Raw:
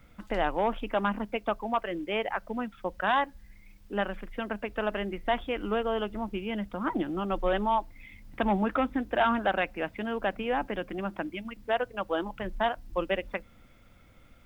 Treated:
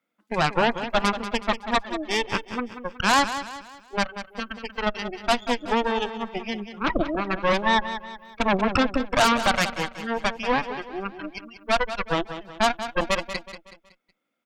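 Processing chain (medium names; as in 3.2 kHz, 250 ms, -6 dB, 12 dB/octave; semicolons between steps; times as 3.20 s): tracing distortion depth 0.024 ms; high-pass 230 Hz 24 dB/octave; spectral noise reduction 22 dB; Chebyshev shaper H 8 -10 dB, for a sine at -13.5 dBFS; feedback delay 186 ms, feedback 41%, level -11 dB; trim +4 dB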